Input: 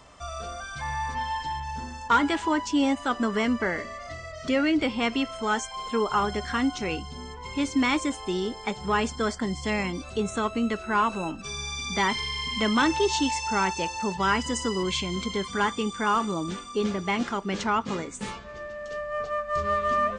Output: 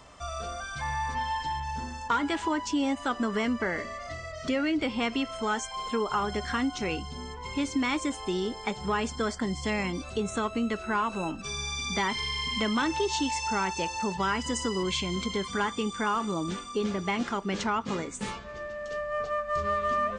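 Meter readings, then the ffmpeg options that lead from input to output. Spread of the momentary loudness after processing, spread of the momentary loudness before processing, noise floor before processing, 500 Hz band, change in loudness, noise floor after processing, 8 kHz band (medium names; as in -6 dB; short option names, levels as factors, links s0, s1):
8 LU, 11 LU, -41 dBFS, -2.5 dB, -3.0 dB, -41 dBFS, -1.5 dB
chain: -af "acompressor=threshold=0.0501:ratio=2.5"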